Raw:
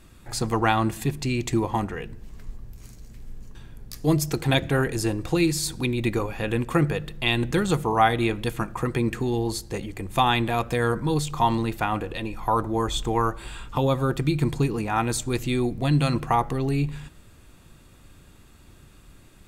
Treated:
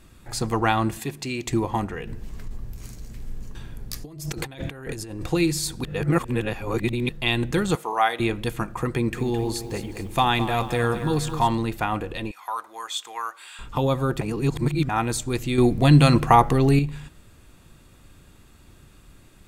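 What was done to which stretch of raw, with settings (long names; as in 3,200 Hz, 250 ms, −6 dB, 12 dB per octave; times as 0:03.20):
0:00.99–0:01.47: high-pass filter 310 Hz 6 dB per octave
0:02.07–0:05.27: compressor whose output falls as the input rises −33 dBFS
0:05.84–0:07.09: reverse
0:07.75–0:08.20: Bessel high-pass filter 640 Hz
0:08.95–0:11.48: feedback echo at a low word length 215 ms, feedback 55%, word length 8 bits, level −11 dB
0:12.31–0:13.59: high-pass filter 1,300 Hz
0:14.21–0:14.89: reverse
0:15.58–0:16.79: clip gain +7 dB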